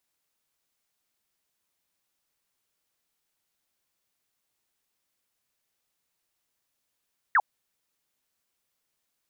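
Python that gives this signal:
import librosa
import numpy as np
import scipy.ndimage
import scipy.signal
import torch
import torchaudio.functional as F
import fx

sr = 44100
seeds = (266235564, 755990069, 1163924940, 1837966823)

y = fx.laser_zap(sr, level_db=-17, start_hz=2000.0, end_hz=730.0, length_s=0.05, wave='sine')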